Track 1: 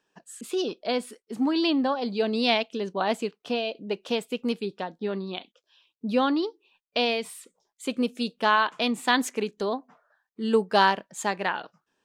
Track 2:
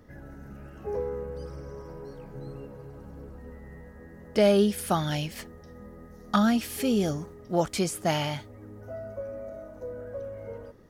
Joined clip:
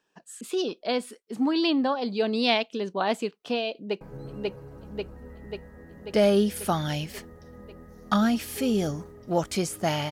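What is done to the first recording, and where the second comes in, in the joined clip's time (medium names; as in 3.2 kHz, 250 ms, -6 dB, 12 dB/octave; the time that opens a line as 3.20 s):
track 1
3.73–4.01 s: echo throw 540 ms, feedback 70%, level -0.5 dB
4.01 s: go over to track 2 from 2.23 s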